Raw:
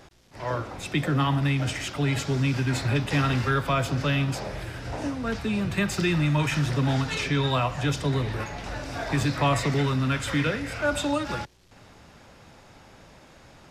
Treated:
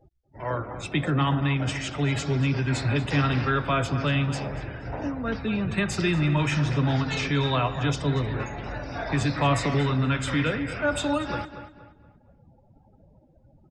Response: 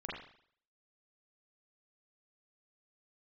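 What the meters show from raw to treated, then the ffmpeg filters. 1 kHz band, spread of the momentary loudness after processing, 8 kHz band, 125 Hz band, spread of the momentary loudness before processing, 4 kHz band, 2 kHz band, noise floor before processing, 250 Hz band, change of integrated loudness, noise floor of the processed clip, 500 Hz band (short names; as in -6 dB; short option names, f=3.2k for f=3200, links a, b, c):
+0.5 dB, 9 LU, -2.0 dB, +0.5 dB, 9 LU, -0.5 dB, 0.0 dB, -52 dBFS, +0.5 dB, +0.5 dB, -59 dBFS, +0.5 dB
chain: -filter_complex "[0:a]afftdn=nr=36:nf=-43,asplit=2[a][b];[b]adelay=236,lowpass=f=3.2k:p=1,volume=-11dB,asplit=2[c][d];[d]adelay=236,lowpass=f=3.2k:p=1,volume=0.36,asplit=2[e][f];[f]adelay=236,lowpass=f=3.2k:p=1,volume=0.36,asplit=2[g][h];[h]adelay=236,lowpass=f=3.2k:p=1,volume=0.36[i];[a][c][e][g][i]amix=inputs=5:normalize=0"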